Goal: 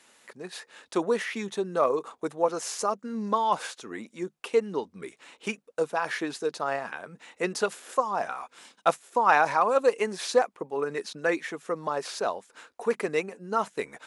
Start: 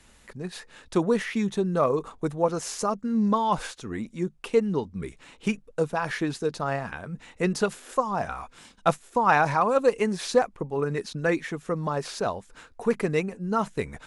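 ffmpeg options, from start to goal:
ffmpeg -i in.wav -af "highpass=360" out.wav

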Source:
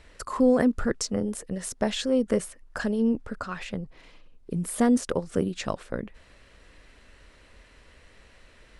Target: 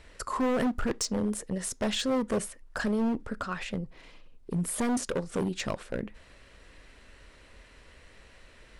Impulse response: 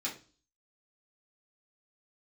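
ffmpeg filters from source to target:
-filter_complex "[0:a]asoftclip=type=hard:threshold=-24dB,asplit=2[link_01][link_02];[1:a]atrim=start_sample=2205,atrim=end_sample=3969[link_03];[link_02][link_03]afir=irnorm=-1:irlink=0,volume=-21dB[link_04];[link_01][link_04]amix=inputs=2:normalize=0"

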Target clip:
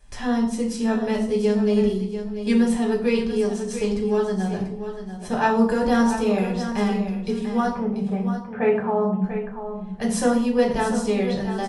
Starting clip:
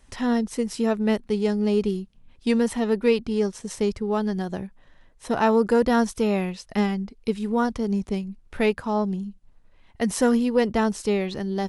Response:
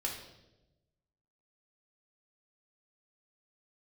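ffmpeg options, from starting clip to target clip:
-filter_complex "[0:a]asettb=1/sr,asplit=3[link_01][link_02][link_03];[link_01]atrim=end=7.734[link_04];[link_02]atrim=start=7.73:end=9.24,asetpts=PTS-STARTPTS,afade=type=in:duration=0.004:curve=qsin,afade=type=out:start_time=1.506:duration=0.004:curve=qsin,highpass=130,equalizer=frequency=150:width_type=q:width=4:gain=8,equalizer=frequency=360:width_type=q:width=4:gain=-5,equalizer=frequency=510:width_type=q:width=4:gain=5,equalizer=frequency=770:width_type=q:width=4:gain=8,equalizer=frequency=1300:width_type=q:width=4:gain=4,lowpass=frequency=2200:width=0.5412,lowpass=frequency=2200:width=1.3066[link_05];[link_03]atrim=start=9.236[link_06];[link_04][link_05]acrossfade=duration=0.004:curve1=hsin:curve2=qsin[link_07];[link_07][link_06]acrossfade=duration=0.004:curve1=qsin:curve2=hsin,aecho=1:1:690|1380:0.316|0.0506[link_08];[1:a]atrim=start_sample=2205,asetrate=79380,aresample=44100[link_09];[link_08][link_09]afir=irnorm=-1:irlink=0,volume=3.5dB"

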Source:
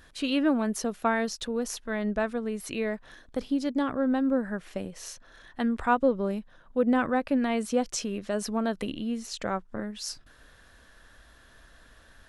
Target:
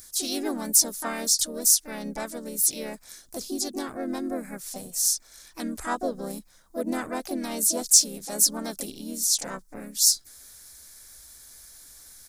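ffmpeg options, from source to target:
ffmpeg -i in.wav -filter_complex "[0:a]aexciter=amount=9.3:drive=9.1:freq=4400,asplit=4[link_01][link_02][link_03][link_04];[link_02]asetrate=37084,aresample=44100,atempo=1.18921,volume=-10dB[link_05];[link_03]asetrate=52444,aresample=44100,atempo=0.840896,volume=-11dB[link_06];[link_04]asetrate=58866,aresample=44100,atempo=0.749154,volume=-4dB[link_07];[link_01][link_05][link_06][link_07]amix=inputs=4:normalize=0,volume=-7.5dB" out.wav

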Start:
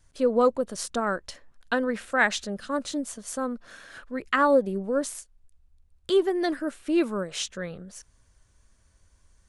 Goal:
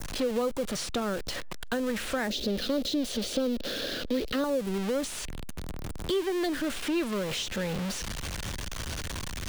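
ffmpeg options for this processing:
ffmpeg -i in.wav -filter_complex "[0:a]aeval=exprs='val(0)+0.5*0.0501*sgn(val(0))':channel_layout=same,asettb=1/sr,asplit=3[link_01][link_02][link_03];[link_01]atrim=end=2.304[link_04];[link_02]atrim=start=2.3:end=4.44,asetpts=PTS-STARTPTS,afade=type=in:duration=0.004:curve=qsin,afade=type=out:start_time=2.136:duration=0.004:curve=qsin,equalizer=frequency=125:width_type=o:width=1:gain=-5,equalizer=frequency=250:width_type=o:width=1:gain=6,equalizer=frequency=500:width_type=o:width=1:gain=10,equalizer=frequency=1000:width_type=o:width=1:gain=-10,equalizer=frequency=2000:width_type=o:width=1:gain=-5,equalizer=frequency=4000:width_type=o:width=1:gain=8,equalizer=frequency=8000:width_type=o:width=1:gain=-8[link_05];[link_03]atrim=start=4.436[link_06];[link_04][link_05]acrossfade=duration=0.004:curve1=hsin:curve2=qsin[link_07];[link_07][link_06]acrossfade=duration=0.004:curve1=qsin:curve2=hsin,acrossover=split=100|590|5700[link_08][link_09][link_10][link_11];[link_08]acompressor=threshold=-38dB:ratio=4[link_12];[link_09]acompressor=threshold=-29dB:ratio=4[link_13];[link_10]acompressor=threshold=-38dB:ratio=4[link_14];[link_11]acompressor=threshold=-45dB:ratio=4[link_15];[link_12][link_13][link_14][link_15]amix=inputs=4:normalize=0,adynamicequalizer=threshold=0.00447:dfrequency=3200:dqfactor=1:tfrequency=3200:tqfactor=1:attack=5:release=100:ratio=0.375:range=2.5:mode=boostabove:tftype=bell" out.wav

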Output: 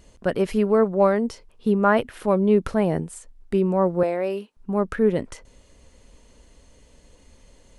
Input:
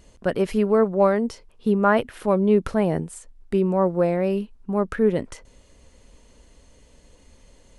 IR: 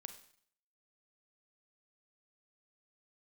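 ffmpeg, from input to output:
-filter_complex "[0:a]asettb=1/sr,asplit=3[link_01][link_02][link_03];[link_01]atrim=end=4.034[link_04];[link_02]atrim=start=4.03:end=4.57,asetpts=PTS-STARTPTS,afade=type=in:duration=0.004:curve=qsin,afade=type=out:start_time=0.536:duration=0.004:curve=qsin,highpass=360[link_05];[link_03]atrim=start=4.566[link_06];[link_04][link_05]acrossfade=duration=0.004:curve1=hsin:curve2=qsin[link_07];[link_07][link_06]acrossfade=duration=0.004:curve1=qsin:curve2=hsin"

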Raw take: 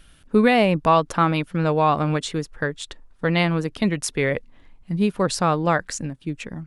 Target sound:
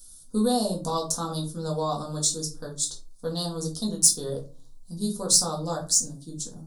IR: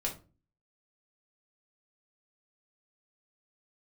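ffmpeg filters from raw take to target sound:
-filter_complex "[0:a]asuperstop=centerf=2200:order=4:qfactor=0.84,aexciter=amount=9.2:drive=8.6:freq=4100[link_01];[1:a]atrim=start_sample=2205[link_02];[link_01][link_02]afir=irnorm=-1:irlink=0,volume=-13.5dB"

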